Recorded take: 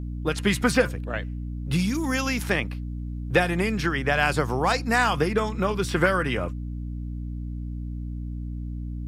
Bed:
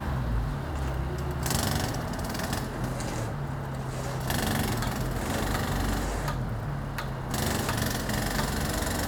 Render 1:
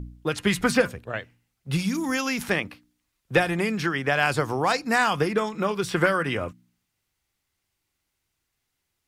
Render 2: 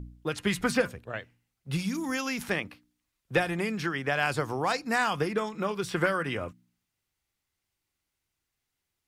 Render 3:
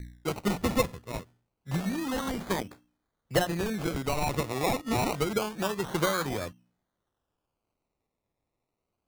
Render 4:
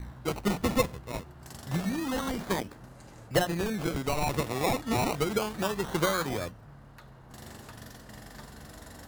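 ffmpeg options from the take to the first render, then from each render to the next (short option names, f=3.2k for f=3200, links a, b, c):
-af "bandreject=f=60:t=h:w=4,bandreject=f=120:t=h:w=4,bandreject=f=180:t=h:w=4,bandreject=f=240:t=h:w=4,bandreject=f=300:t=h:w=4"
-af "volume=-5dB"
-filter_complex "[0:a]acrossover=split=840|5200[a][b][c];[b]asoftclip=type=hard:threshold=-24.5dB[d];[a][d][c]amix=inputs=3:normalize=0,acrusher=samples=22:mix=1:aa=0.000001:lfo=1:lforange=13.2:lforate=0.27"
-filter_complex "[1:a]volume=-18dB[a];[0:a][a]amix=inputs=2:normalize=0"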